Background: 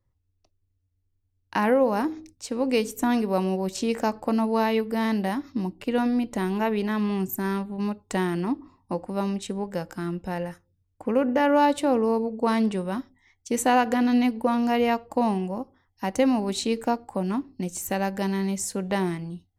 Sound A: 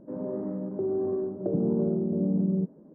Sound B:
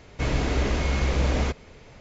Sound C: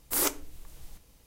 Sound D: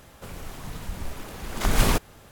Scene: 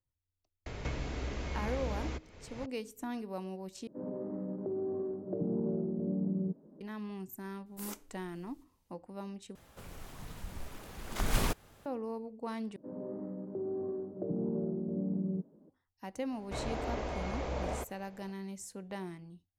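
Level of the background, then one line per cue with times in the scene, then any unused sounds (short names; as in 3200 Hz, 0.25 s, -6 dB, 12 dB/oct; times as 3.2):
background -16 dB
0.66 add B -14 dB + three-band squash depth 100%
3.87 replace with A -7.5 dB + recorder AGC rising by 14 dB/s
7.66 add C -18 dB
9.55 replace with D -9.5 dB
12.76 replace with A -8.5 dB
16.32 add B -16 dB + bell 710 Hz +11.5 dB 1.6 oct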